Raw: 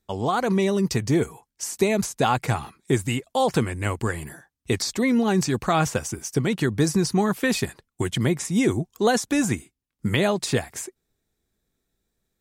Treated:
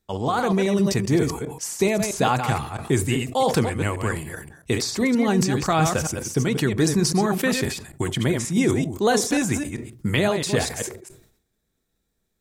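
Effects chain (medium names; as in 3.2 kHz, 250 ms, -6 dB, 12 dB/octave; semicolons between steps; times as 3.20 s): chunks repeated in reverse 132 ms, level -6.5 dB; on a send at -21.5 dB: peaking EQ 550 Hz +7 dB 2.5 oct + reverberation RT60 0.40 s, pre-delay 6 ms; on the sum: decay stretcher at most 89 dB/s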